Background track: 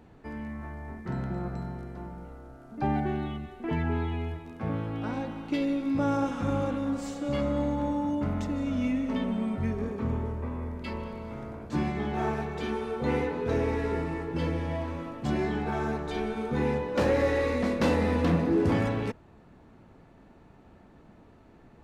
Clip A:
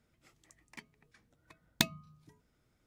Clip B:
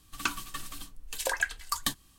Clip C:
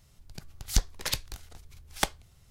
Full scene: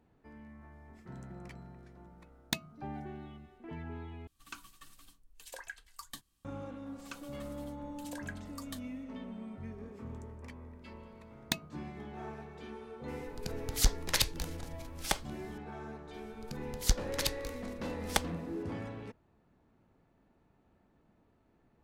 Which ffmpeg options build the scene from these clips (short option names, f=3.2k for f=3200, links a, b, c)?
-filter_complex "[1:a]asplit=2[a][b];[2:a]asplit=2[c][d];[3:a]asplit=2[e][f];[0:a]volume=-14.5dB[g];[e]alimiter=level_in=11.5dB:limit=-1dB:release=50:level=0:latency=1[h];[g]asplit=2[i][j];[i]atrim=end=4.274[k];[c]atrim=end=2.18,asetpts=PTS-STARTPTS,volume=-16.5dB[l];[j]atrim=start=6.446[m];[a]atrim=end=2.86,asetpts=PTS-STARTPTS,volume=-5dB,afade=t=in:d=0.004:c=hsin,afade=t=out:st=2.856:d=0.004:c=hsin,adelay=720[n];[d]atrim=end=2.18,asetpts=PTS-STARTPTS,volume=-17dB,afade=t=in:d=0.004:c=hsin,afade=t=out:st=2.176:d=0.004:c=hsin,adelay=6860[o];[b]atrim=end=2.86,asetpts=PTS-STARTPTS,volume=-4.5dB,afade=t=in:d=0.004:c=hsin,afade=t=out:st=2.856:d=0.004:c=hsin,adelay=9710[p];[h]atrim=end=2.5,asetpts=PTS-STARTPTS,volume=-8.5dB,afade=t=in:d=0.004:c=hsin,afade=t=out:st=2.496:d=0.004:c=hsin,adelay=13080[q];[f]atrim=end=2.5,asetpts=PTS-STARTPTS,volume=-3dB,afade=t=in:d=0.004:c=hsin,afade=t=out:st=2.496:d=0.004:c=hsin,adelay=16130[r];[k][l]acrossfade=d=0.004:c1=hsin:c2=hsin[s];[s][m]acrossfade=d=0.004:c1=hsin:c2=hsin[t];[t][n][o][p][q][r]amix=inputs=6:normalize=0"